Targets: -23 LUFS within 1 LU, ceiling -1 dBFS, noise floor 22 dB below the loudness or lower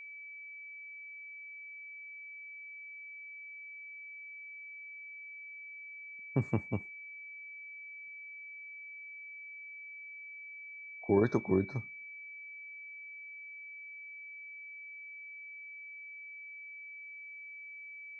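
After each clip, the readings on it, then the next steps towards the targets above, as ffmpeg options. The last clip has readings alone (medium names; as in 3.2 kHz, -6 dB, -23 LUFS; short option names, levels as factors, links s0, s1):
steady tone 2.3 kHz; tone level -45 dBFS; loudness -41.0 LUFS; peak level -15.0 dBFS; loudness target -23.0 LUFS
-> -af "bandreject=f=2300:w=30"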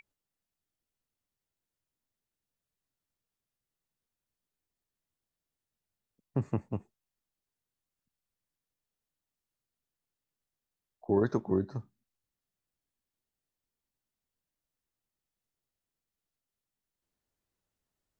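steady tone not found; loudness -32.5 LUFS; peak level -15.5 dBFS; loudness target -23.0 LUFS
-> -af "volume=2.99"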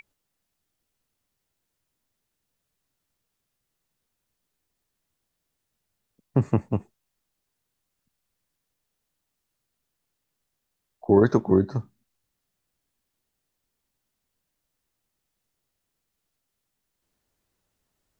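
loudness -23.0 LUFS; peak level -6.0 dBFS; noise floor -81 dBFS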